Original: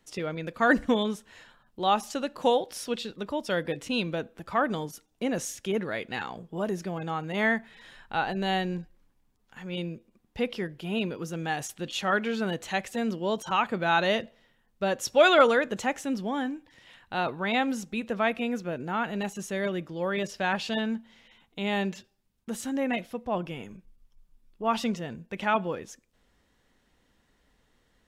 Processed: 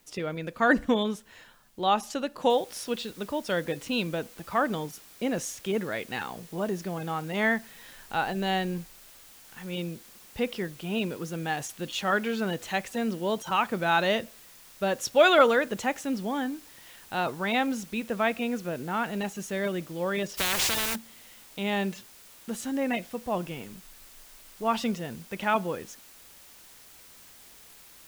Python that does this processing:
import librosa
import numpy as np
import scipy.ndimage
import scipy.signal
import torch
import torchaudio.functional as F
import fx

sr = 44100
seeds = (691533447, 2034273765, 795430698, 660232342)

y = fx.noise_floor_step(x, sr, seeds[0], at_s=2.5, before_db=-66, after_db=-52, tilt_db=0.0)
y = fx.spectral_comp(y, sr, ratio=10.0, at=(20.37, 20.94), fade=0.02)